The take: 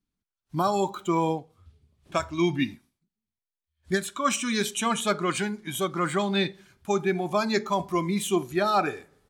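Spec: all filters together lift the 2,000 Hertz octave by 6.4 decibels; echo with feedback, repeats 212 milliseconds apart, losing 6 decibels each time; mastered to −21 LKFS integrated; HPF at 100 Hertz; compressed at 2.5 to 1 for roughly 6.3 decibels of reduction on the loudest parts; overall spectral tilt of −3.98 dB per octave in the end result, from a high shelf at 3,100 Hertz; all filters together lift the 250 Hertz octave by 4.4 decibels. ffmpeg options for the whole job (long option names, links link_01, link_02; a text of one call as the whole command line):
ffmpeg -i in.wav -af "highpass=100,equalizer=frequency=250:width_type=o:gain=6.5,equalizer=frequency=2000:width_type=o:gain=6.5,highshelf=frequency=3100:gain=4,acompressor=threshold=-25dB:ratio=2.5,aecho=1:1:212|424|636|848|1060|1272:0.501|0.251|0.125|0.0626|0.0313|0.0157,volume=6dB" out.wav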